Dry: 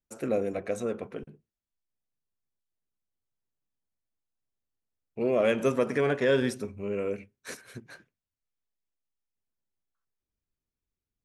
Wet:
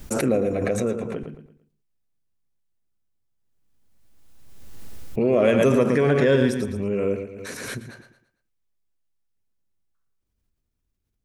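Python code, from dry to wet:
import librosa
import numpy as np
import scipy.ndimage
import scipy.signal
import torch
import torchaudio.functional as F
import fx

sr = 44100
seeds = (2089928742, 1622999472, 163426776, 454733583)

y = fx.low_shelf(x, sr, hz=300.0, db=8.0)
y = fx.echo_feedback(y, sr, ms=113, feedback_pct=34, wet_db=-8.5)
y = fx.pre_swell(y, sr, db_per_s=27.0)
y = y * librosa.db_to_amplitude(2.5)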